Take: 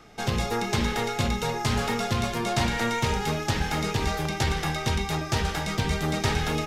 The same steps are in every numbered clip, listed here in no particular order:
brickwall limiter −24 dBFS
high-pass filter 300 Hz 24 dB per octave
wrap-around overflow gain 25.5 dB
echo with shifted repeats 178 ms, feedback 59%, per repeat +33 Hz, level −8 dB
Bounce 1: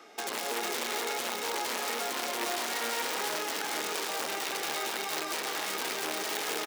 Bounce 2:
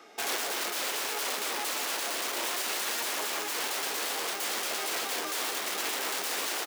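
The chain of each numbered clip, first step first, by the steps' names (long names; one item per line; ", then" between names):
brickwall limiter, then wrap-around overflow, then high-pass filter, then echo with shifted repeats
wrap-around overflow, then echo with shifted repeats, then brickwall limiter, then high-pass filter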